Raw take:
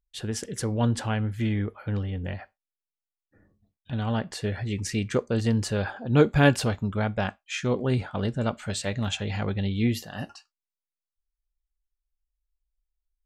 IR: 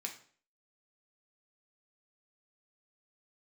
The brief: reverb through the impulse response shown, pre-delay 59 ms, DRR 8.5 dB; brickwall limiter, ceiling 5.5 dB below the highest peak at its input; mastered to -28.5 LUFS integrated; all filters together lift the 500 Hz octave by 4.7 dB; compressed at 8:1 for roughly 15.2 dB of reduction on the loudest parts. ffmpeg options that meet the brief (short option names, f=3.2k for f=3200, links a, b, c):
-filter_complex "[0:a]equalizer=f=500:t=o:g=5.5,acompressor=threshold=-26dB:ratio=8,alimiter=limit=-22.5dB:level=0:latency=1,asplit=2[a][b];[1:a]atrim=start_sample=2205,adelay=59[c];[b][c]afir=irnorm=-1:irlink=0,volume=-7.5dB[d];[a][d]amix=inputs=2:normalize=0,volume=4dB"